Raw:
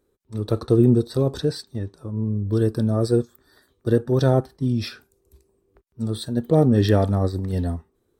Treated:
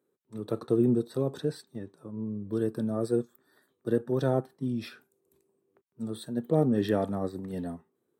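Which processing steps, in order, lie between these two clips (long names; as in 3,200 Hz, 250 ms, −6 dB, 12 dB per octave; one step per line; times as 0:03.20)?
high-pass filter 140 Hz 24 dB per octave
parametric band 5,000 Hz −9 dB 0.76 octaves
level −7 dB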